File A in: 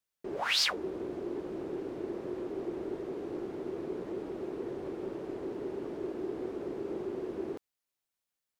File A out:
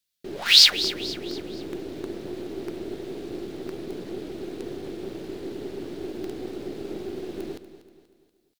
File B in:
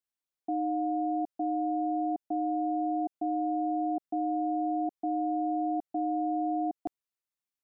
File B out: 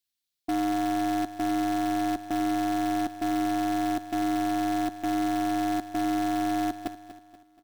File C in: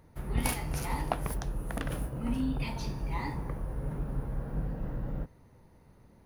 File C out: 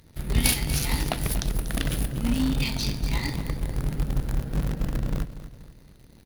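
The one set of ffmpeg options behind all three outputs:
-filter_complex "[0:a]equalizer=frequency=500:width_type=o:width=1:gain=-4,equalizer=frequency=1000:width_type=o:width=1:gain=-10,equalizer=frequency=4000:width_type=o:width=1:gain=9,equalizer=frequency=16000:width_type=o:width=1:gain=5,asplit=2[link_01][link_02];[link_02]acrusher=bits=6:dc=4:mix=0:aa=0.000001,volume=-4.5dB[link_03];[link_01][link_03]amix=inputs=2:normalize=0,aecho=1:1:240|480|720|960:0.211|0.093|0.0409|0.018,volume=3.5dB"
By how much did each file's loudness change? +12.0, +3.0, +7.5 LU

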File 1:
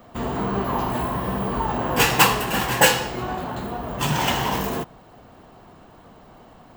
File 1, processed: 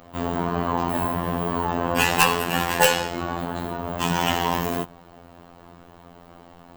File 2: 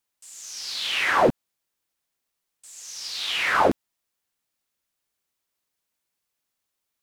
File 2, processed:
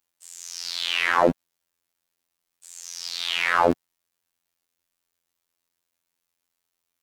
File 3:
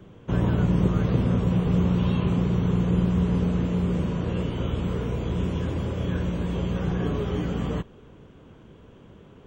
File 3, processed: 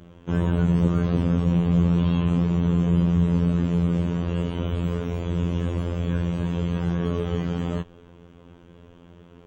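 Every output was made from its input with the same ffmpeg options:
-af "afftfilt=real='hypot(re,im)*cos(PI*b)':imag='0':win_size=2048:overlap=0.75,acontrast=22,volume=-1dB"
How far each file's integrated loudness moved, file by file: −1.0, 0.0, +1.5 LU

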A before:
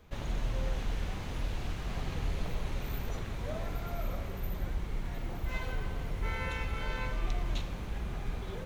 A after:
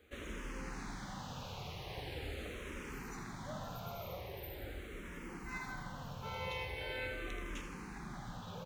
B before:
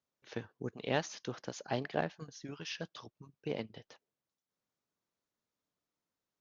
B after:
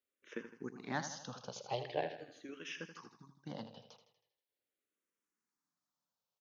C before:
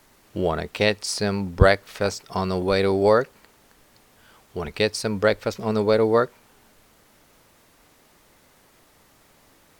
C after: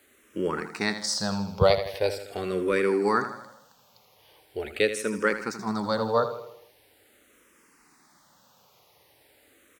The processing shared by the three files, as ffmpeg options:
-filter_complex "[0:a]highpass=frequency=200:poles=1,bandreject=frequency=660:width=12,aecho=1:1:80|160|240|320|400|480:0.299|0.155|0.0807|0.042|0.0218|0.0114,asplit=2[link_01][link_02];[link_02]afreqshift=-0.42[link_03];[link_01][link_03]amix=inputs=2:normalize=1"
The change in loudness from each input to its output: −7.0, −4.0, −4.5 LU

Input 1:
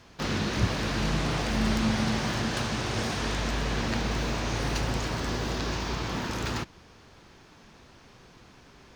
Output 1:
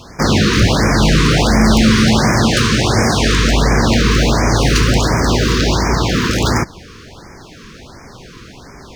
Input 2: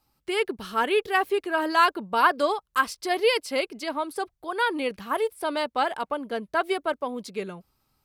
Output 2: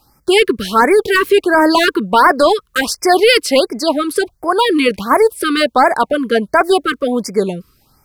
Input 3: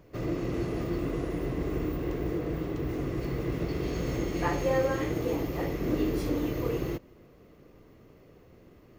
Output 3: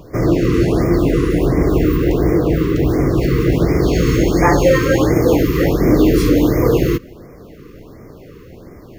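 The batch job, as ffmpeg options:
-af "apsyclip=21dB,afftfilt=real='re*(1-between(b*sr/1024,670*pow(3500/670,0.5+0.5*sin(2*PI*1.4*pts/sr))/1.41,670*pow(3500/670,0.5+0.5*sin(2*PI*1.4*pts/sr))*1.41))':imag='im*(1-between(b*sr/1024,670*pow(3500/670,0.5+0.5*sin(2*PI*1.4*pts/sr))/1.41,670*pow(3500/670,0.5+0.5*sin(2*PI*1.4*pts/sr))*1.41))':win_size=1024:overlap=0.75,volume=-4dB"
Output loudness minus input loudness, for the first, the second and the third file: +16.0, +12.5, +16.5 LU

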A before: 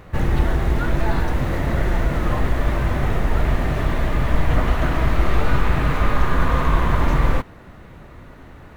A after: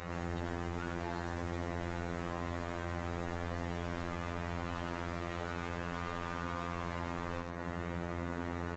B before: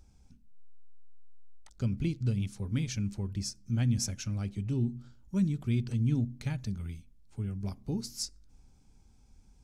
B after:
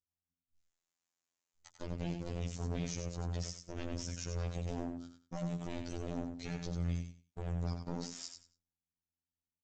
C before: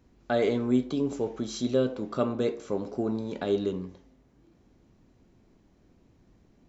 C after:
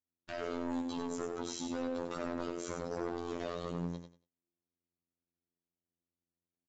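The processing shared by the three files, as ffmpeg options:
-filter_complex "[0:a]aemphasis=mode=production:type=50fm,agate=range=-41dB:threshold=-46dB:ratio=16:detection=peak,highpass=frequency=51:poles=1,lowshelf=frequency=100:gain=-7,acontrast=48,alimiter=limit=-14dB:level=0:latency=1:release=32,acompressor=threshold=-31dB:ratio=16,aeval=exprs='0.0224*(abs(mod(val(0)/0.0224+3,4)-2)-1)':channel_layout=same,afftfilt=real='hypot(re,im)*cos(PI*b)':imag='0':win_size=2048:overlap=0.75,asoftclip=type=hard:threshold=-28dB,asplit=2[link_01][link_02];[link_02]aecho=0:1:93|186|279:0.473|0.104|0.0229[link_03];[link_01][link_03]amix=inputs=2:normalize=0,aresample=16000,aresample=44100,volume=2dB"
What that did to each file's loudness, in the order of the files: −17.5, −7.5, −10.0 LU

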